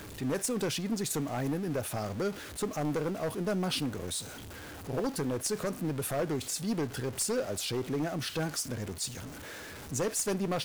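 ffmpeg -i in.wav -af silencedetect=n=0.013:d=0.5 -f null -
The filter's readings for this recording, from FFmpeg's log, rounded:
silence_start: 4.21
silence_end: 4.89 | silence_duration: 0.68
silence_start: 9.28
silence_end: 9.92 | silence_duration: 0.63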